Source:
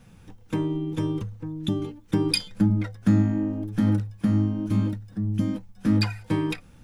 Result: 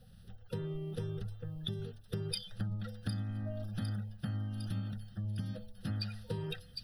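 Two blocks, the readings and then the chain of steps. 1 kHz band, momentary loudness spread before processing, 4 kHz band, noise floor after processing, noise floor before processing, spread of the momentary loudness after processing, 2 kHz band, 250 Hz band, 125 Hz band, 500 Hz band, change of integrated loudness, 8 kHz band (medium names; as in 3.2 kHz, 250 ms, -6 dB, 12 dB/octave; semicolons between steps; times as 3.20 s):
-15.5 dB, 8 LU, -10.0 dB, -56 dBFS, -51 dBFS, 5 LU, -14.5 dB, -19.0 dB, -11.0 dB, -11.0 dB, -14.0 dB, -12.0 dB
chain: coarse spectral quantiser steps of 30 dB; static phaser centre 1.5 kHz, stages 8; de-hum 70.83 Hz, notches 11; on a send: feedback echo behind a high-pass 756 ms, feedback 49%, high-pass 4.6 kHz, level -6.5 dB; on the sum: compression 4:1, threshold -32 dBFS, peak gain reduction 10 dB; trim -2.5 dB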